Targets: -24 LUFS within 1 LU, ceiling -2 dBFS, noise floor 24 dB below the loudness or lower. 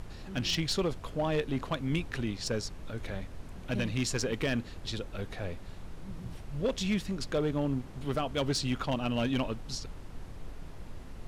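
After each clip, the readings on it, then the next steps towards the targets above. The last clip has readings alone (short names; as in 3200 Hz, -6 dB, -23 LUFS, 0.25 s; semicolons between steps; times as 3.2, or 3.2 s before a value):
clipped 0.8%; flat tops at -23.0 dBFS; noise floor -46 dBFS; noise floor target -57 dBFS; loudness -33.0 LUFS; peak -23.0 dBFS; loudness target -24.0 LUFS
-> clip repair -23 dBFS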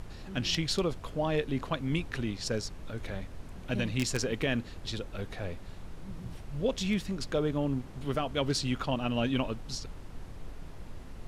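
clipped 0.0%; noise floor -46 dBFS; noise floor target -57 dBFS
-> noise print and reduce 11 dB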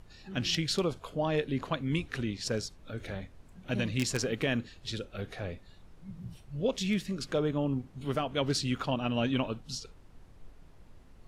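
noise floor -56 dBFS; noise floor target -57 dBFS
-> noise print and reduce 6 dB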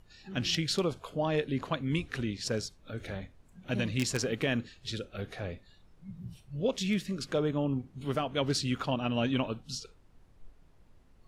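noise floor -61 dBFS; loudness -33.0 LUFS; peak -14.0 dBFS; loudness target -24.0 LUFS
-> gain +9 dB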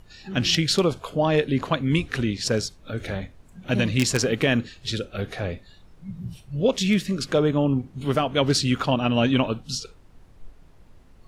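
loudness -24.0 LUFS; peak -5.0 dBFS; noise floor -52 dBFS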